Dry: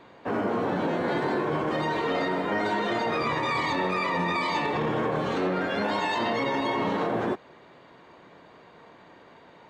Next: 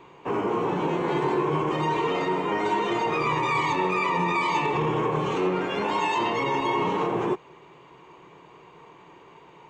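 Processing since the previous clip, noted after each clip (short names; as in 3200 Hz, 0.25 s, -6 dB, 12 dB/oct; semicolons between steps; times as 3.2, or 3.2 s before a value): ripple EQ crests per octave 0.72, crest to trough 10 dB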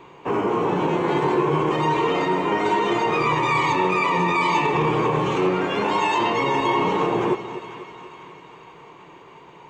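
split-band echo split 1000 Hz, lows 0.244 s, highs 0.495 s, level -12.5 dB; gain +4 dB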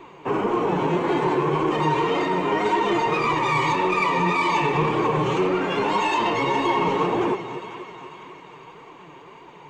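in parallel at -3 dB: soft clip -21.5 dBFS, distortion -11 dB; on the sum: flange 1.8 Hz, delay 2.5 ms, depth 5.3 ms, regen +43%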